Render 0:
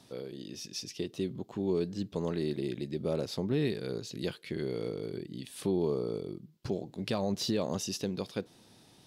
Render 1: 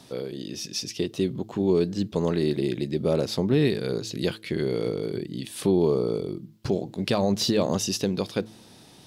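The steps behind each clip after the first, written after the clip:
hum removal 108.5 Hz, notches 3
level +8.5 dB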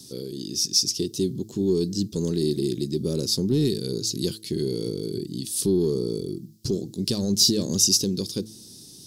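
soft clipping −13.5 dBFS, distortion −20 dB
drawn EQ curve 380 Hz 0 dB, 670 Hz −18 dB, 2,300 Hz −15 dB, 5,100 Hz +10 dB
level +1.5 dB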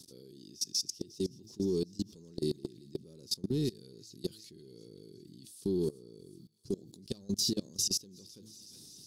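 delay with a high-pass on its return 369 ms, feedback 53%, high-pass 1,600 Hz, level −13.5 dB
output level in coarse steps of 23 dB
level −7 dB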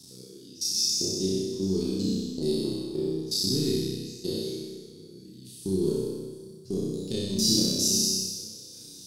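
peak hold with a decay on every bin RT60 1.51 s
flutter between parallel walls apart 5.4 metres, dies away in 0.82 s

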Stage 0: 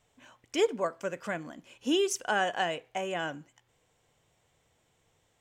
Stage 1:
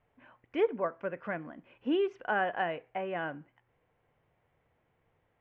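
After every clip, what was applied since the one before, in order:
low-pass filter 2,300 Hz 24 dB per octave
level −1.5 dB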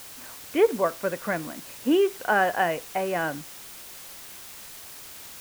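background noise white −51 dBFS
level +8 dB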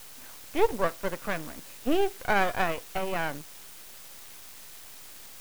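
half-wave rectification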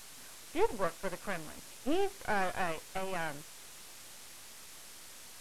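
linear delta modulator 64 kbit/s, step −38.5 dBFS
level −6 dB

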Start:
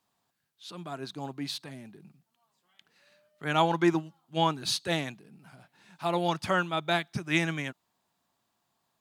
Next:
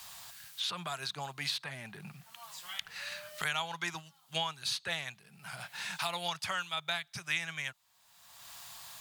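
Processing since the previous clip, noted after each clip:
guitar amp tone stack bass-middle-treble 10-0-10
multiband upward and downward compressor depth 100%
level +2.5 dB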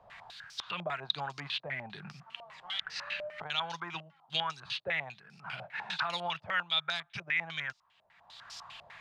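brickwall limiter −25.5 dBFS, peak gain reduction 9 dB
low-pass on a step sequencer 10 Hz 600–5,300 Hz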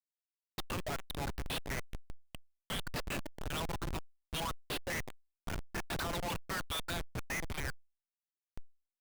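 bass and treble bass −3 dB, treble 0 dB
comparator with hysteresis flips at −35 dBFS
power curve on the samples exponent 0.35
level −1.5 dB

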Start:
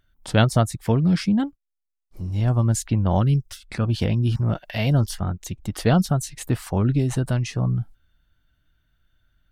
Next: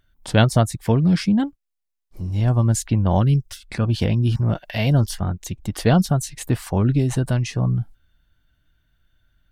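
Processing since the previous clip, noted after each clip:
notch filter 1,300 Hz, Q 16
level +2 dB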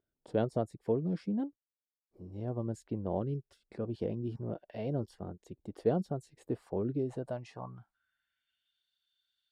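band-pass filter sweep 430 Hz → 3,900 Hz, 0:07.03–0:08.84
bass and treble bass +3 dB, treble +10 dB
notch filter 6,100 Hz, Q 11
level −6 dB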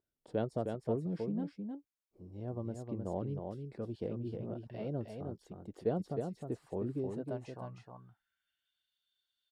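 single-tap delay 311 ms −5 dB
level −4 dB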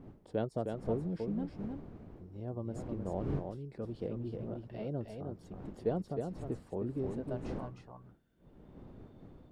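wind on the microphone 270 Hz −48 dBFS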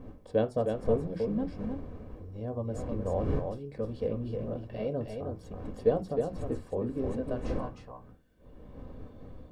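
convolution reverb RT60 0.25 s, pre-delay 4 ms, DRR 7 dB
level +4.5 dB

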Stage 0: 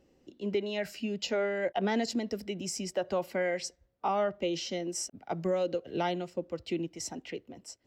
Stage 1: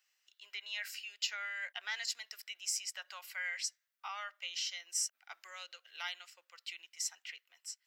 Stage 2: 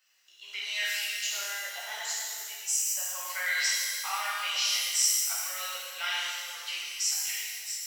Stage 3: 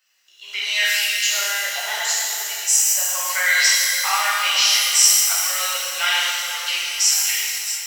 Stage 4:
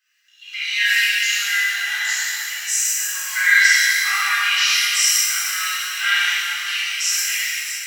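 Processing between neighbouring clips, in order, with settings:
high-pass filter 1,400 Hz 24 dB per octave; high-shelf EQ 11,000 Hz +8 dB
gain on a spectral selection 0:01.23–0:03.26, 1,100–5,700 Hz −10 dB; reverb with rising layers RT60 1.9 s, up +12 semitones, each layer −8 dB, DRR −7.5 dB; level +3.5 dB
automatic gain control gain up to 9 dB; on a send: feedback delay with all-pass diffusion 470 ms, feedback 54%, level −12.5 dB; on the sum: level +3 dB
four-pole ladder high-pass 1,400 Hz, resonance 50%; rectangular room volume 2,200 cubic metres, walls mixed, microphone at 3.8 metres; level +1.5 dB

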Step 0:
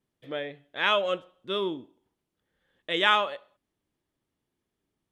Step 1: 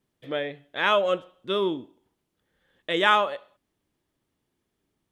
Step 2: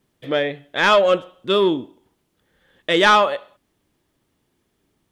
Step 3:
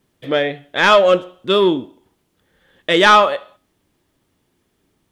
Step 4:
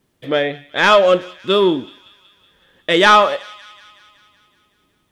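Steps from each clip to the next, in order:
dynamic equaliser 3,100 Hz, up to −6 dB, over −36 dBFS, Q 0.8; level +4.5 dB
soft clipping −15 dBFS, distortion −14 dB; level +9 dB
tuned comb filter 90 Hz, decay 0.38 s, harmonics all, mix 40%; level +6.5 dB
delay with a high-pass on its return 187 ms, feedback 64%, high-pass 2,000 Hz, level −18 dB

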